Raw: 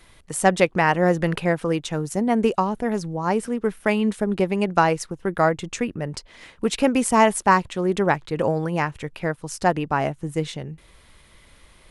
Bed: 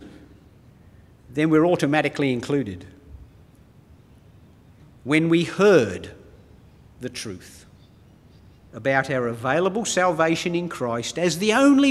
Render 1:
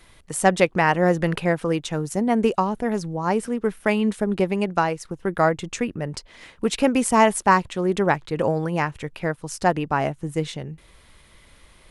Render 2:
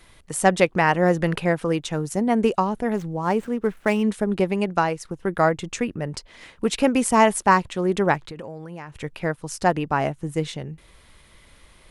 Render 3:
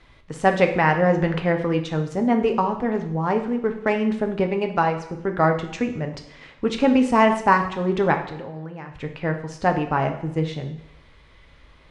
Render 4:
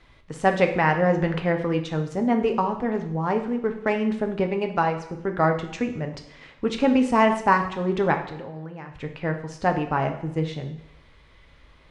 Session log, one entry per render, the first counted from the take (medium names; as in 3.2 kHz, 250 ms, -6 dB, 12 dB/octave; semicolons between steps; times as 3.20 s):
4.50–5.05 s: fade out linear, to -7 dB
2.96–4.09 s: median filter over 9 samples; 8.17–8.98 s: compression 8:1, threshold -32 dBFS
distance through air 150 m; two-slope reverb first 0.71 s, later 2.2 s, from -24 dB, DRR 4.5 dB
trim -2 dB